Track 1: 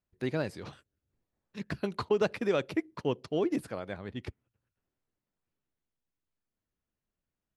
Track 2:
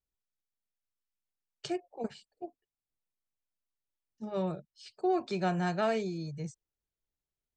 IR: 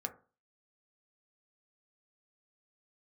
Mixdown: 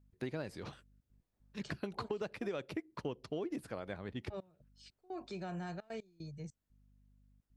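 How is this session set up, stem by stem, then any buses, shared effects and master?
-2.0 dB, 0.00 s, no send, none
-7.5 dB, 0.00 s, no send, hum 50 Hz, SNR 22 dB; peak limiter -27.5 dBFS, peak gain reduction 8 dB; trance gate "x..xxxxxxx.x..xx" 150 bpm -24 dB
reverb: none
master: compression 6:1, threshold -36 dBFS, peak gain reduction 11.5 dB

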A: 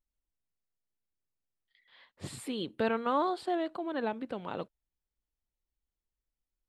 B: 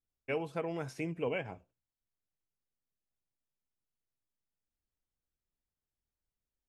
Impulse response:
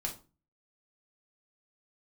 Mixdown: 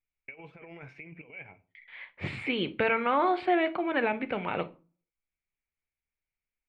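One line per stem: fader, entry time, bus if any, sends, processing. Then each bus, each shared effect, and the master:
+3.0 dB, 0.00 s, send -7 dB, gate with hold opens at -58 dBFS
-10.0 dB, 0.00 s, send -14 dB, compressor with a negative ratio -39 dBFS, ratio -0.5; auto duck -19 dB, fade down 0.40 s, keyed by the first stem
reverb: on, RT60 0.35 s, pre-delay 5 ms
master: resonant low-pass 2.3 kHz, resonance Q 7.3; peak limiter -16 dBFS, peak gain reduction 5.5 dB

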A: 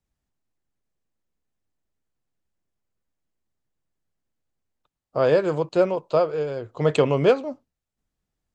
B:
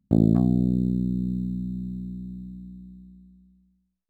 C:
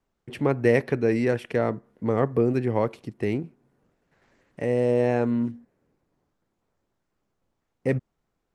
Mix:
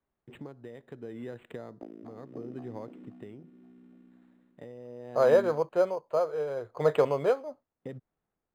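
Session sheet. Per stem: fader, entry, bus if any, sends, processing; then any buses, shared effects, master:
-10.5 dB, 0.00 s, no bus, no send, no echo send, high-order bell 1 kHz +9.5 dB 2.7 oct
-0.5 dB, 1.70 s, bus A, no send, echo send -15 dB, reverb removal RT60 0.72 s; high-pass 330 Hz 24 dB/octave; treble shelf 6.4 kHz +11 dB
-7.0 dB, 0.00 s, bus A, no send, no echo send, peaking EQ 2.3 kHz -4 dB 0.21 oct
bus A: 0.0 dB, high-pass 97 Hz; compression 8:1, threshold -36 dBFS, peak gain reduction 14.5 dB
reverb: none
echo: feedback delay 526 ms, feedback 36%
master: tremolo 0.74 Hz, depth 49%; decimation joined by straight lines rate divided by 8×

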